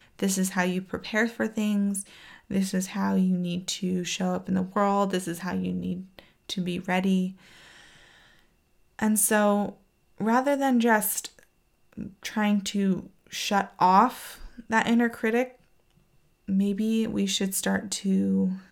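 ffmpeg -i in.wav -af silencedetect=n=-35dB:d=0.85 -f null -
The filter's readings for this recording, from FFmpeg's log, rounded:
silence_start: 7.31
silence_end: 8.99 | silence_duration: 1.68
silence_start: 15.47
silence_end: 16.49 | silence_duration: 1.01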